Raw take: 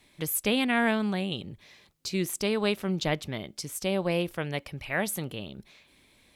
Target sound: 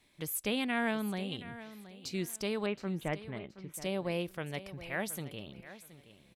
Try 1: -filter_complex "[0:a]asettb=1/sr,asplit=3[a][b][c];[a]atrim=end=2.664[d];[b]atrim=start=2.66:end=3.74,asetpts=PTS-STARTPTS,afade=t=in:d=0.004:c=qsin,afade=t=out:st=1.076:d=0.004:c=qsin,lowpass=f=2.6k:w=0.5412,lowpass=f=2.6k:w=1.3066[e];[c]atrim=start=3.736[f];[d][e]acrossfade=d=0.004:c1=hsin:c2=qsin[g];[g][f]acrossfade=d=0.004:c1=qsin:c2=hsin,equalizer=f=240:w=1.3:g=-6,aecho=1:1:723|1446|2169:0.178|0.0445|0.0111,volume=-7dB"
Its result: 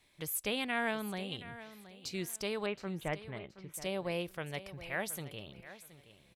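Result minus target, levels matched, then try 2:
250 Hz band -3.0 dB
-filter_complex "[0:a]asettb=1/sr,asplit=3[a][b][c];[a]atrim=end=2.664[d];[b]atrim=start=2.66:end=3.74,asetpts=PTS-STARTPTS,afade=t=in:d=0.004:c=qsin,afade=t=out:st=1.076:d=0.004:c=qsin,lowpass=f=2.6k:w=0.5412,lowpass=f=2.6k:w=1.3066[e];[c]atrim=start=3.736[f];[d][e]acrossfade=d=0.004:c1=hsin:c2=qsin[g];[g][f]acrossfade=d=0.004:c1=qsin:c2=hsin,aecho=1:1:723|1446|2169:0.178|0.0445|0.0111,volume=-7dB"

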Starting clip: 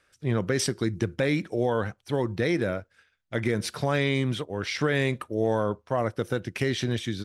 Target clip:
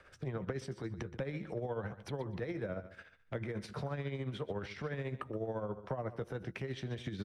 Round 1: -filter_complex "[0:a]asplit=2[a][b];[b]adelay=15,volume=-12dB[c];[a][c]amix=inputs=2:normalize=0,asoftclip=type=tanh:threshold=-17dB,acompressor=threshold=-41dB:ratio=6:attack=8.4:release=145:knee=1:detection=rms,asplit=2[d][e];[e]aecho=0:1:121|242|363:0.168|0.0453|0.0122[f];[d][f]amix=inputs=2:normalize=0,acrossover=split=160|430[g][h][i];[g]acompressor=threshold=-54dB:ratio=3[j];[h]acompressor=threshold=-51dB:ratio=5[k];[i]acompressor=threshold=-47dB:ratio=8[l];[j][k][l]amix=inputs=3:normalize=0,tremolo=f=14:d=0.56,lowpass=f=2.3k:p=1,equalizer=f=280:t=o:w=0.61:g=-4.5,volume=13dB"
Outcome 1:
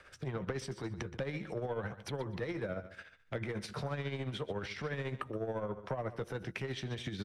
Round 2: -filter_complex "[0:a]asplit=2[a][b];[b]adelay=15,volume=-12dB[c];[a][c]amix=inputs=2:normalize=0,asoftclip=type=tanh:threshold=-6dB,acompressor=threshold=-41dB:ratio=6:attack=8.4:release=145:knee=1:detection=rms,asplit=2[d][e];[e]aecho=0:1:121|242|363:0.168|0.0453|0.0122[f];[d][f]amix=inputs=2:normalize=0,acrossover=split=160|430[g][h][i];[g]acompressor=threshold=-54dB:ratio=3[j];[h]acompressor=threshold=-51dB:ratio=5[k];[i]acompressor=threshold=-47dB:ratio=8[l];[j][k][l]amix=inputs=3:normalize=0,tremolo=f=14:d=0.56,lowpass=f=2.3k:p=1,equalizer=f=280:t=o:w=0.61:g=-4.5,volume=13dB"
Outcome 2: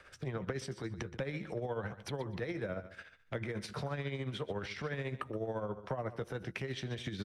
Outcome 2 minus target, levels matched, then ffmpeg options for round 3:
2000 Hz band +3.0 dB
-filter_complex "[0:a]asplit=2[a][b];[b]adelay=15,volume=-12dB[c];[a][c]amix=inputs=2:normalize=0,asoftclip=type=tanh:threshold=-6dB,acompressor=threshold=-41dB:ratio=6:attack=8.4:release=145:knee=1:detection=rms,asplit=2[d][e];[e]aecho=0:1:121|242|363:0.168|0.0453|0.0122[f];[d][f]amix=inputs=2:normalize=0,acrossover=split=160|430[g][h][i];[g]acompressor=threshold=-54dB:ratio=3[j];[h]acompressor=threshold=-51dB:ratio=5[k];[i]acompressor=threshold=-47dB:ratio=8[l];[j][k][l]amix=inputs=3:normalize=0,tremolo=f=14:d=0.56,lowpass=f=1.1k:p=1,equalizer=f=280:t=o:w=0.61:g=-4.5,volume=13dB"

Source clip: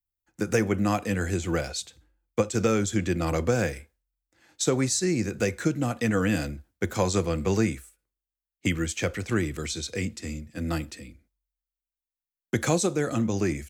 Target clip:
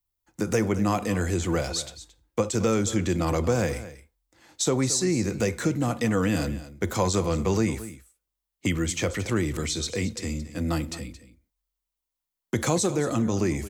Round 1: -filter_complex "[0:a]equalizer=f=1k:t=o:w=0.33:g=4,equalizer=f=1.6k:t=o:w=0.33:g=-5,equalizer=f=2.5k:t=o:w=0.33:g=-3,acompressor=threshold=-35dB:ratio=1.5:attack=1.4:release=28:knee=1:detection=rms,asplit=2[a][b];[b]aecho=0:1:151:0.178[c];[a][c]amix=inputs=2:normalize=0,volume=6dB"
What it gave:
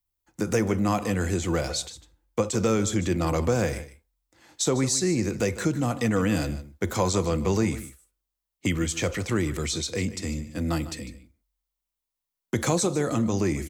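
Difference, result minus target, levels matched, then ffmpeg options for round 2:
echo 72 ms early
-filter_complex "[0:a]equalizer=f=1k:t=o:w=0.33:g=4,equalizer=f=1.6k:t=o:w=0.33:g=-5,equalizer=f=2.5k:t=o:w=0.33:g=-3,acompressor=threshold=-35dB:ratio=1.5:attack=1.4:release=28:knee=1:detection=rms,asplit=2[a][b];[b]aecho=0:1:223:0.178[c];[a][c]amix=inputs=2:normalize=0,volume=6dB"

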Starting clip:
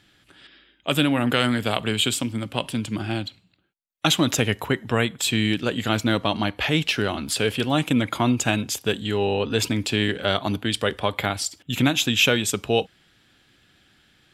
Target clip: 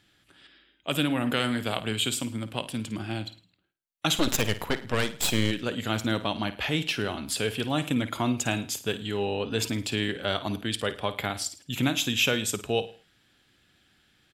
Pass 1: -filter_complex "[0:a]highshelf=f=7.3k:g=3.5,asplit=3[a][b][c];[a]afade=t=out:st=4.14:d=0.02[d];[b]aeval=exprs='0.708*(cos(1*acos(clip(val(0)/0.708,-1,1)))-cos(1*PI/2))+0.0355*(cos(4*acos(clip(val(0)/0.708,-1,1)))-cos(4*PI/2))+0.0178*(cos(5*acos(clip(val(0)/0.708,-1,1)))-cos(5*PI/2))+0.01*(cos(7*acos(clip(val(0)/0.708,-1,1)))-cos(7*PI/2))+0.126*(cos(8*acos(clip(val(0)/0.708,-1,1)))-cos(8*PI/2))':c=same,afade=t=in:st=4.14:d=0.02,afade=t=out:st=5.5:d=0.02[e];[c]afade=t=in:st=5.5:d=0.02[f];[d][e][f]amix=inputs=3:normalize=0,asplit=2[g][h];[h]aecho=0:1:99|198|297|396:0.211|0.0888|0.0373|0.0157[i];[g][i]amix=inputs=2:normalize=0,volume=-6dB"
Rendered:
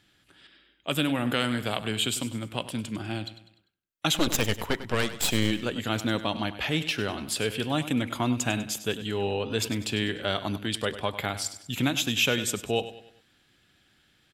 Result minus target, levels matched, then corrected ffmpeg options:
echo 45 ms late
-filter_complex "[0:a]highshelf=f=7.3k:g=3.5,asplit=3[a][b][c];[a]afade=t=out:st=4.14:d=0.02[d];[b]aeval=exprs='0.708*(cos(1*acos(clip(val(0)/0.708,-1,1)))-cos(1*PI/2))+0.0355*(cos(4*acos(clip(val(0)/0.708,-1,1)))-cos(4*PI/2))+0.0178*(cos(5*acos(clip(val(0)/0.708,-1,1)))-cos(5*PI/2))+0.01*(cos(7*acos(clip(val(0)/0.708,-1,1)))-cos(7*PI/2))+0.126*(cos(8*acos(clip(val(0)/0.708,-1,1)))-cos(8*PI/2))':c=same,afade=t=in:st=4.14:d=0.02,afade=t=out:st=5.5:d=0.02[e];[c]afade=t=in:st=5.5:d=0.02[f];[d][e][f]amix=inputs=3:normalize=0,asplit=2[g][h];[h]aecho=0:1:54|108|162|216:0.211|0.0888|0.0373|0.0157[i];[g][i]amix=inputs=2:normalize=0,volume=-6dB"

